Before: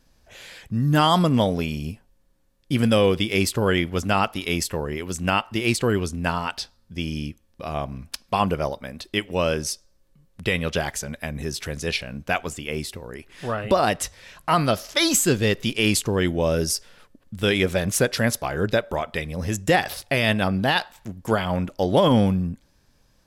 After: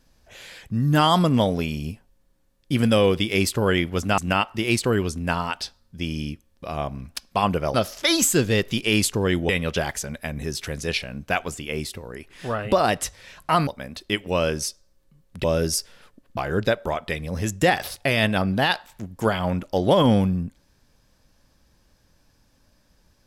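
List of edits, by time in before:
0:04.18–0:05.15: remove
0:08.71–0:10.48: swap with 0:14.66–0:16.41
0:17.34–0:18.43: remove

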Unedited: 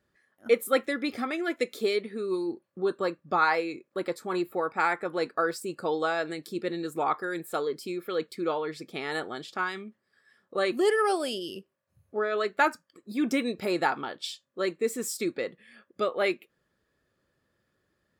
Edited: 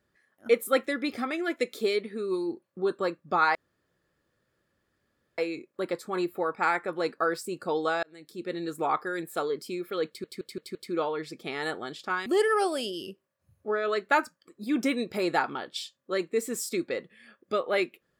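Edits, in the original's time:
0:03.55: splice in room tone 1.83 s
0:06.20–0:06.83: fade in
0:08.24: stutter 0.17 s, 5 plays
0:09.75–0:10.74: remove

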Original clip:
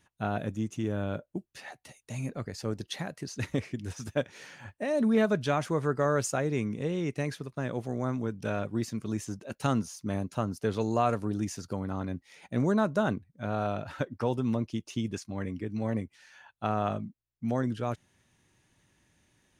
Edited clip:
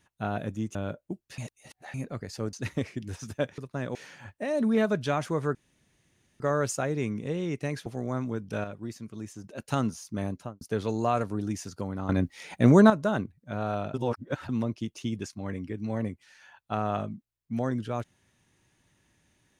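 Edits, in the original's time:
0:00.75–0:01.00: remove
0:01.63–0:02.19: reverse
0:02.78–0:03.30: remove
0:05.95: splice in room tone 0.85 s
0:07.41–0:07.78: move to 0:04.35
0:08.56–0:09.36: clip gain −6.5 dB
0:10.24–0:10.53: fade out and dull
0:12.01–0:12.82: clip gain +9.5 dB
0:13.86–0:14.41: reverse

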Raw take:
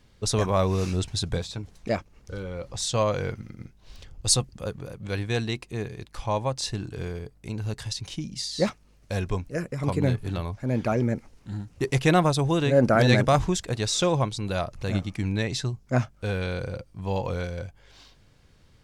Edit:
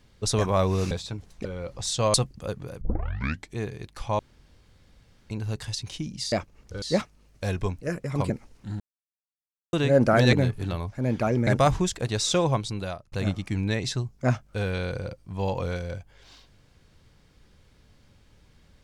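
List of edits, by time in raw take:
0:00.91–0:01.36: remove
0:01.90–0:02.40: move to 0:08.50
0:03.09–0:04.32: remove
0:04.99: tape start 0.76 s
0:06.37–0:07.48: fill with room tone
0:09.98–0:11.12: move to 0:13.15
0:11.62–0:12.55: silence
0:14.37–0:14.80: fade out

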